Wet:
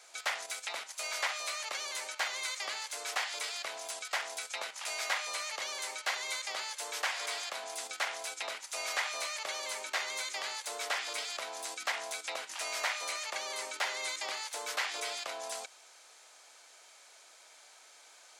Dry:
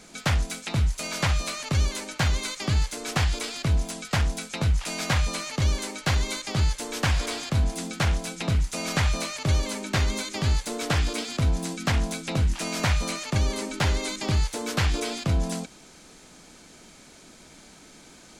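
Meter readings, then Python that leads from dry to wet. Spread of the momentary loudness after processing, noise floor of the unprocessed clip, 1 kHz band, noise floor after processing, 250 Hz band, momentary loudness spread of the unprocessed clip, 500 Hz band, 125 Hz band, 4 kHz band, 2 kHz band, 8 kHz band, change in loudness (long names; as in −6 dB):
22 LU, −50 dBFS, −5.5 dB, −58 dBFS, −31.5 dB, 3 LU, −9.5 dB, below −40 dB, −5.0 dB, −3.5 dB, −4.5 dB, −9.0 dB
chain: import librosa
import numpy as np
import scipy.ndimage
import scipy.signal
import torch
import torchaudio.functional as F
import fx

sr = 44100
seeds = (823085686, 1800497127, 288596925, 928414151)

p1 = scipy.signal.sosfilt(scipy.signal.butter(4, 600.0, 'highpass', fs=sr, output='sos'), x)
p2 = fx.dynamic_eq(p1, sr, hz=2000.0, q=5.9, threshold_db=-46.0, ratio=4.0, max_db=5)
p3 = fx.level_steps(p2, sr, step_db=22)
p4 = p2 + (p3 * 10.0 ** (2.5 / 20.0))
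y = p4 * 10.0 ** (-7.5 / 20.0)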